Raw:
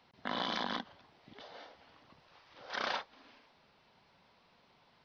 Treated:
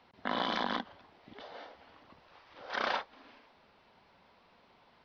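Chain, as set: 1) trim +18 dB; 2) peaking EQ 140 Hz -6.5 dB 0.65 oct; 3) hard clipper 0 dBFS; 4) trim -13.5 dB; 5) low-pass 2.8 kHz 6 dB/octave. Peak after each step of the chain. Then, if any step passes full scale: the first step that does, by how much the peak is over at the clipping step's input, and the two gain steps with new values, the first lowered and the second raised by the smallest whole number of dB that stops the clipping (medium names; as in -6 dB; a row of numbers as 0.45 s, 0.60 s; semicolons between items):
-2.0 dBFS, -2.0 dBFS, -2.0 dBFS, -15.5 dBFS, -16.5 dBFS; nothing clips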